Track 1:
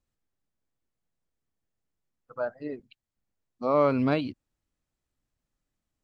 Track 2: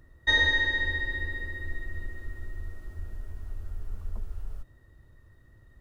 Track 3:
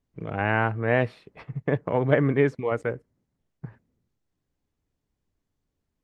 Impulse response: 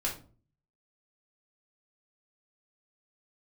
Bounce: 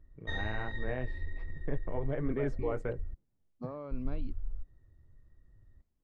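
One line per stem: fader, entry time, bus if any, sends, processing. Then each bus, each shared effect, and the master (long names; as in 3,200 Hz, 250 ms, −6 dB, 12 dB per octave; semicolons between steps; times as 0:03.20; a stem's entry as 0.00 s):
−10.0 dB, 0.00 s, no bus, no send, downward compressor 16 to 1, threshold −31 dBFS, peak gain reduction 14.5 dB
−10.5 dB, 0.00 s, muted 0:03.14–0:03.91, bus A, no send, no processing
0:02.18 −11.5 dB → 0:02.44 −4.5 dB, 0.00 s, bus A, no send, bass and treble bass −5 dB, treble +6 dB
bus A: 0.0 dB, flanger 1.3 Hz, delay 3 ms, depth 8.7 ms, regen −41%; brickwall limiter −26 dBFS, peak gain reduction 7 dB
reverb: not used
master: spectral tilt −2.5 dB per octave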